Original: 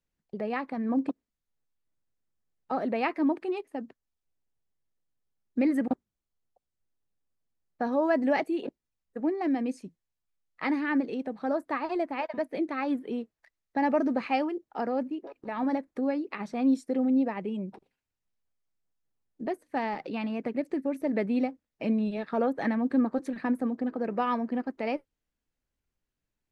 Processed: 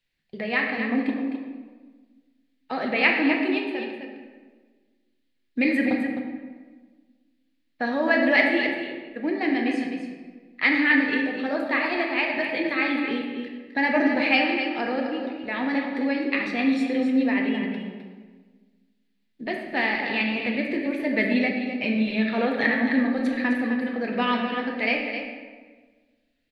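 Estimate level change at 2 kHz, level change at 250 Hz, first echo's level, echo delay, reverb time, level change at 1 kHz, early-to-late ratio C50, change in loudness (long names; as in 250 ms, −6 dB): +16.0 dB, +4.5 dB, −8.5 dB, 259 ms, 1.4 s, +3.0 dB, 2.0 dB, +6.0 dB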